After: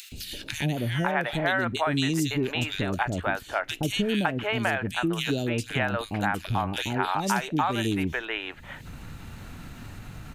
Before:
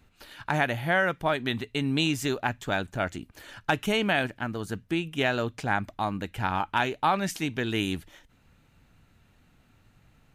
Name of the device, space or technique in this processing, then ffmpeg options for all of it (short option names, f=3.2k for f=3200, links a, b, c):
upward and downward compression: -filter_complex "[0:a]asettb=1/sr,asplit=3[a][b][c];[a]atrim=end=4.734[d];[b]atrim=start=4.73:end=6.94,asetpts=PTS-STARTPTS,afade=t=in:d=0.004:c=qsin,afade=t=out:st=2.206:d=0.004:c=qsin,equalizer=f=11k:w=0.67:g=5.5[e];[c]atrim=start=6.936[f];[d][e]acrossfade=d=0.004:c1=hsin:c2=qsin[g];[g][f]acrossfade=d=0.004:c1=qsin:c2=hsin,acrossover=split=510|2700[h][i][j];[h]adelay=120[k];[i]adelay=560[l];[k][l][j]amix=inputs=3:normalize=0,acompressor=mode=upward:threshold=-33dB:ratio=2.5,acompressor=threshold=-28dB:ratio=4,volume=6dB"